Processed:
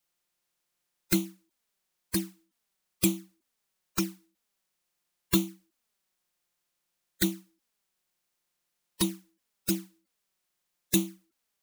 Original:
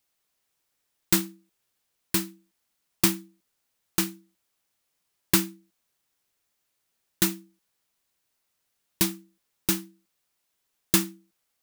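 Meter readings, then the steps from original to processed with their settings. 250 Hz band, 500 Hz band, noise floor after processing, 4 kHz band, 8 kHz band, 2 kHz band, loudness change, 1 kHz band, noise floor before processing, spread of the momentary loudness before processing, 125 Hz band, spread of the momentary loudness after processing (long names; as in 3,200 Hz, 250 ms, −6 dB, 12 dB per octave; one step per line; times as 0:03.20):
−0.5 dB, −1.0 dB, −82 dBFS, −5.0 dB, −5.5 dB, −6.5 dB, −4.5 dB, −7.0 dB, −78 dBFS, 14 LU, −1.0 dB, 12 LU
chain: spectral magnitudes quantised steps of 30 dB
flanger swept by the level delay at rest 5.7 ms, full sweep at −22 dBFS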